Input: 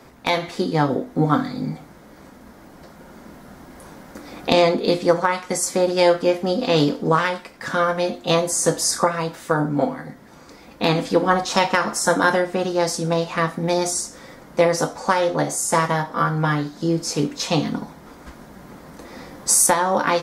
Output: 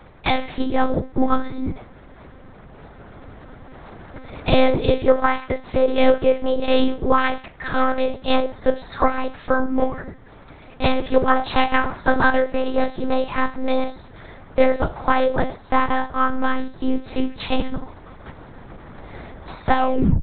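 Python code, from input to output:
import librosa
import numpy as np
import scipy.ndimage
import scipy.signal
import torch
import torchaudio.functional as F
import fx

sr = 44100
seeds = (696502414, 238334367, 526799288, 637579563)

y = fx.tape_stop_end(x, sr, length_s=0.49)
y = fx.lpc_monotone(y, sr, seeds[0], pitch_hz=260.0, order=8)
y = y * 10.0 ** (2.0 / 20.0)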